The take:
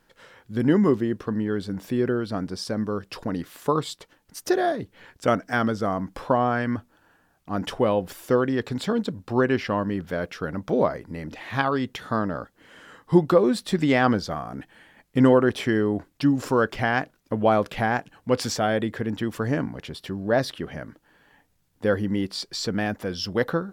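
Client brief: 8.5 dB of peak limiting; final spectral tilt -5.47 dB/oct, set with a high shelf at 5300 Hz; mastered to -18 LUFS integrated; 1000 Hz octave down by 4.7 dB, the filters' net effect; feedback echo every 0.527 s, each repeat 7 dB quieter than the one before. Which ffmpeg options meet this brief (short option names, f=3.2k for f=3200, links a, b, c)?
-af "equalizer=f=1k:t=o:g=-7,highshelf=f=5.3k:g=4.5,alimiter=limit=-15dB:level=0:latency=1,aecho=1:1:527|1054|1581|2108|2635:0.447|0.201|0.0905|0.0407|0.0183,volume=9dB"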